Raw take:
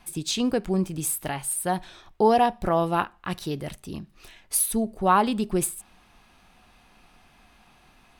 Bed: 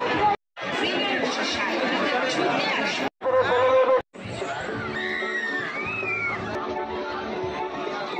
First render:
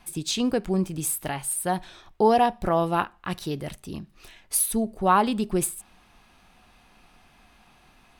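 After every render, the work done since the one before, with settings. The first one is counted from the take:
no processing that can be heard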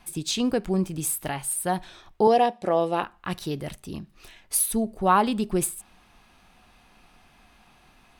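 0:02.27–0:03.03: loudspeaker in its box 230–9,900 Hz, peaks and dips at 510 Hz +5 dB, 1,000 Hz −4 dB, 1,400 Hz −7 dB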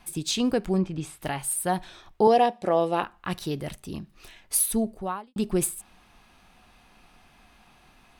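0:00.78–0:01.22: low-pass filter 3,700 Hz
0:04.87–0:05.36: fade out quadratic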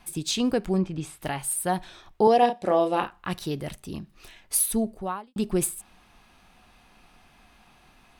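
0:02.39–0:03.27: double-tracking delay 33 ms −7 dB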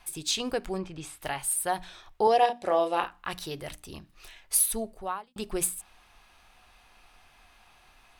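parametric band 200 Hz −11.5 dB 1.9 octaves
mains-hum notches 60/120/180/240/300 Hz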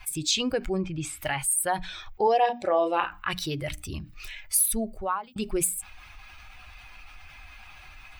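spectral dynamics exaggerated over time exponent 1.5
envelope flattener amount 50%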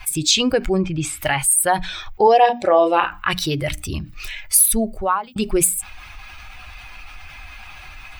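level +9 dB
brickwall limiter −2 dBFS, peak gain reduction 2 dB

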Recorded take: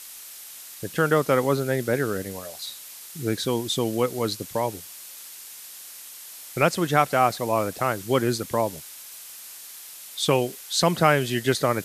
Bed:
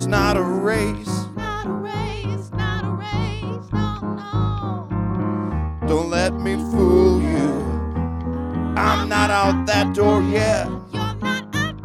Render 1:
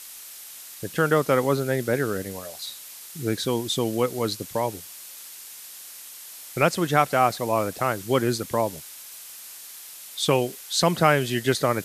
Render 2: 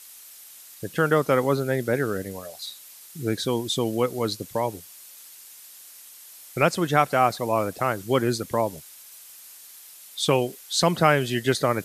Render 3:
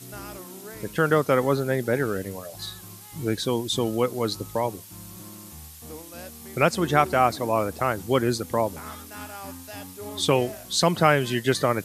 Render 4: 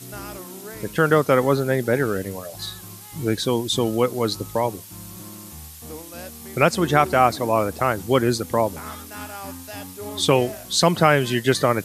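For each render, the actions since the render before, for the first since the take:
no processing that can be heard
broadband denoise 6 dB, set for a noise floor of −42 dBFS
mix in bed −22 dB
level +3.5 dB; brickwall limiter −2 dBFS, peak gain reduction 2 dB

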